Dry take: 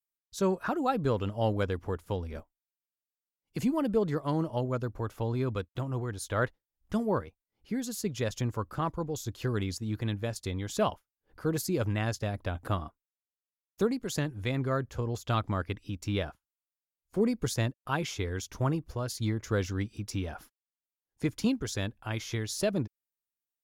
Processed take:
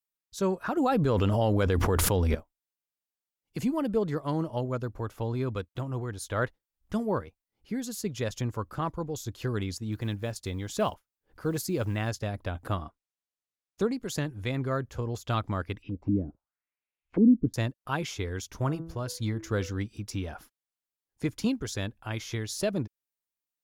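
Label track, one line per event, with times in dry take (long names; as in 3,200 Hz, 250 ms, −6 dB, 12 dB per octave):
0.770000	2.350000	envelope flattener amount 100%
9.920000	12.110000	one scale factor per block 7 bits
12.850000	13.970000	low-pass filter 9,000 Hz
15.820000	17.540000	envelope-controlled low-pass 270–2,600 Hz down, full sweep at −29.5 dBFS
18.520000	19.800000	hum removal 164.4 Hz, notches 11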